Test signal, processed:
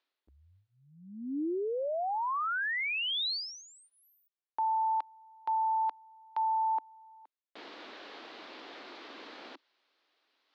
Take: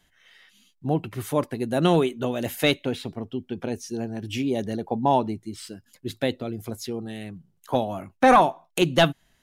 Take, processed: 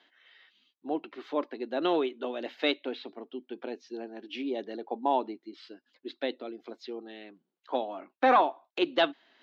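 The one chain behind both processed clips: elliptic band-pass 290–4200 Hz, stop band 40 dB; reverse; upward compressor, threshold -47 dBFS; reverse; trim -5.5 dB

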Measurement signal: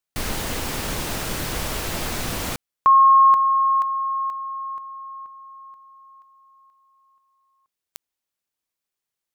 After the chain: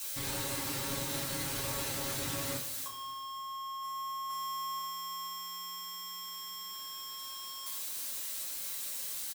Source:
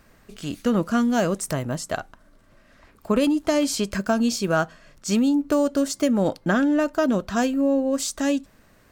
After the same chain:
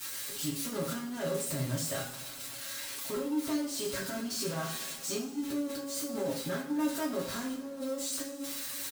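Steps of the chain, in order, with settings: zero-crossing glitches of -17.5 dBFS; bass shelf 86 Hz +8 dB; comb 7.4 ms, depth 94%; saturation -16.5 dBFS; high-pass 67 Hz 12 dB/octave; feedback comb 280 Hz, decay 0.38 s, harmonics all, mix 70%; compressor with a negative ratio -32 dBFS, ratio -1; treble shelf 10 kHz -7.5 dB; band-stop 690 Hz, Q 12; two-slope reverb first 0.41 s, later 2.6 s, from -18 dB, DRR -3 dB; trim -6.5 dB

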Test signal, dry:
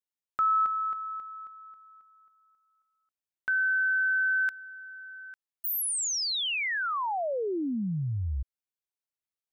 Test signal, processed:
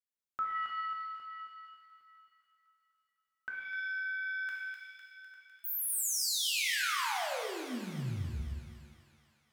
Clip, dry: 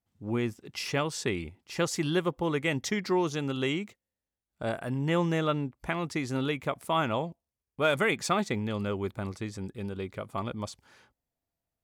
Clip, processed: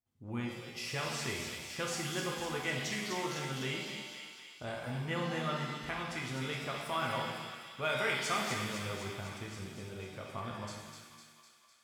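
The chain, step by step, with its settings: feedback echo behind a high-pass 252 ms, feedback 63%, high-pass 1.9 kHz, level -5 dB; dynamic bell 320 Hz, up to -8 dB, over -43 dBFS, Q 0.98; pitch-shifted reverb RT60 1.2 s, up +7 st, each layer -8 dB, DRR -1 dB; trim -8 dB

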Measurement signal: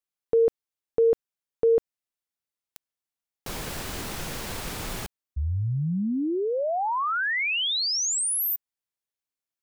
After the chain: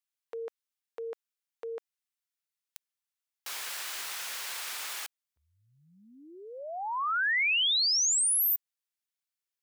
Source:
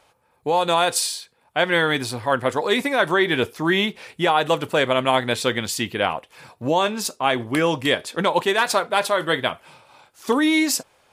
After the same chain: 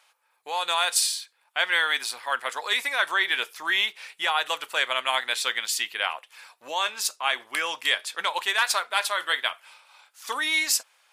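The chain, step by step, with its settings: high-pass 1.3 kHz 12 dB/octave

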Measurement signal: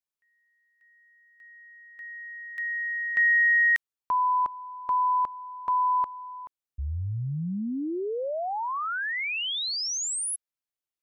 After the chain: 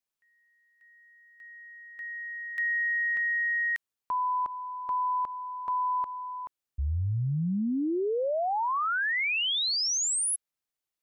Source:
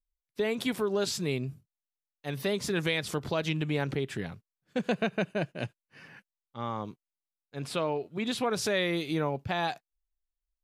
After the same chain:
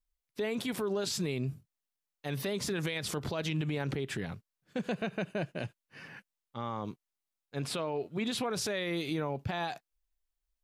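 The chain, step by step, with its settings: peak limiter -27.5 dBFS; trim +2.5 dB

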